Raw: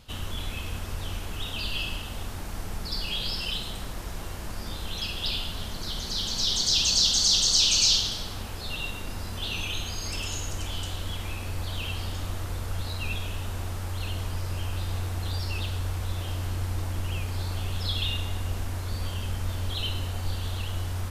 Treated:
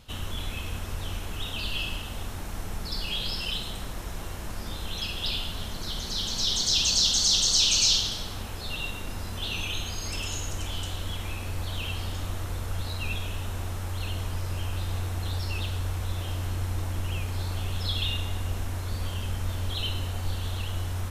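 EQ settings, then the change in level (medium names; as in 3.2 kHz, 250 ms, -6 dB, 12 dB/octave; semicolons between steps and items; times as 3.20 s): band-stop 4.7 kHz, Q 15; 0.0 dB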